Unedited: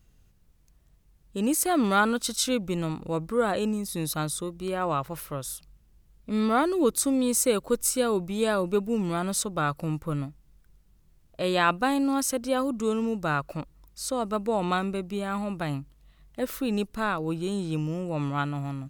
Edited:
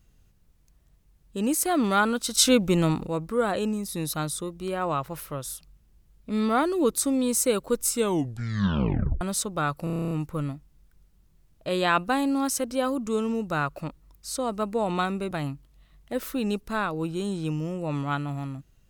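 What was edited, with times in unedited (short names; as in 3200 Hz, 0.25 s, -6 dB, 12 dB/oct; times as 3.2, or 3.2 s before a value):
2.35–3.06 gain +7 dB
7.89 tape stop 1.32 s
9.84 stutter 0.03 s, 10 plays
15.04–15.58 cut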